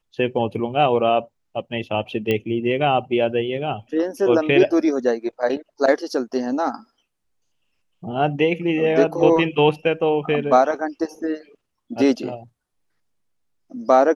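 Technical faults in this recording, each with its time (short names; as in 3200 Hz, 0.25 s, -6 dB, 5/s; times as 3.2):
2.31 pop -10 dBFS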